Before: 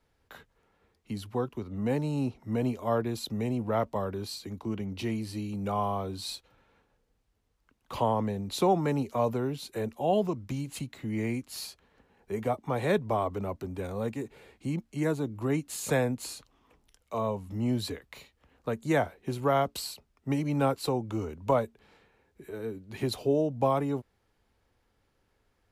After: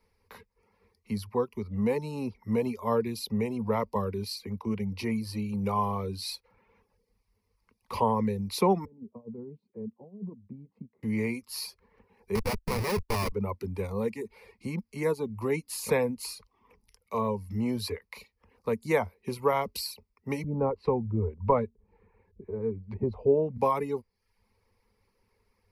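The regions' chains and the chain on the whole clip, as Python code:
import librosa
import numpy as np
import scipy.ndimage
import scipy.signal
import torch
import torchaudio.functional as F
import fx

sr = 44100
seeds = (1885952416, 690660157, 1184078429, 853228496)

y = fx.chain(x, sr, fx.low_shelf(hz=300.0, db=3.0),
    fx.over_compress(threshold_db=-28.0, ratio=-0.5),
    fx.ladder_bandpass(hz=220.0, resonance_pct=30), at=(8.85, 11.03))
y = fx.chain(y, sr, fx.high_shelf(hz=9600.0, db=2.0),
    fx.schmitt(flips_db=-32.0), at=(12.35, 13.32))
y = fx.chain(y, sr, fx.low_shelf(hz=110.0, db=12.0),
    fx.filter_lfo_lowpass(shape='saw_up', hz=1.6, low_hz=440.0, high_hz=2600.0, q=0.71), at=(20.44, 23.58))
y = fx.ripple_eq(y, sr, per_octave=0.87, db=11)
y = fx.dereverb_blind(y, sr, rt60_s=0.54)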